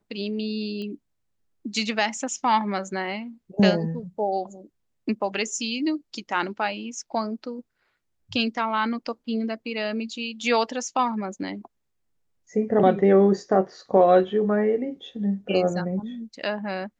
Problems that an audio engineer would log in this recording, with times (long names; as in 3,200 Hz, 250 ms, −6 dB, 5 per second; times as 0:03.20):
0:00.82: click −25 dBFS